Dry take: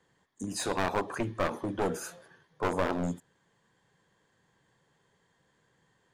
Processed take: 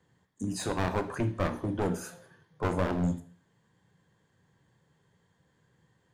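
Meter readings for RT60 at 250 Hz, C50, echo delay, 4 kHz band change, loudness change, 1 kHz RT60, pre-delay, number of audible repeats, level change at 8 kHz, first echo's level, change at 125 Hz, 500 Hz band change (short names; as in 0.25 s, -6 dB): 0.45 s, 14.5 dB, none, -2.5 dB, +1.0 dB, 0.45 s, 7 ms, none, -2.5 dB, none, +6.5 dB, -1.0 dB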